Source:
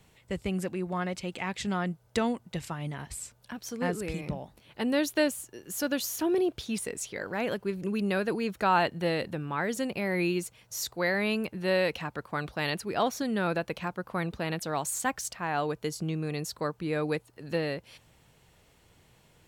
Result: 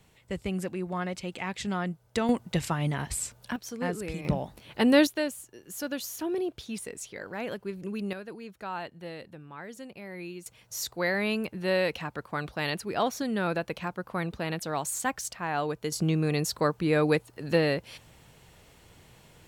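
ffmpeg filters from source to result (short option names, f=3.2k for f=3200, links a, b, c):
-af "asetnsamples=n=441:p=0,asendcmd='2.29 volume volume 7dB;3.56 volume volume -1dB;4.25 volume volume 7dB;5.07 volume volume -4dB;8.13 volume volume -12dB;10.46 volume volume 0dB;15.92 volume volume 6dB',volume=-0.5dB"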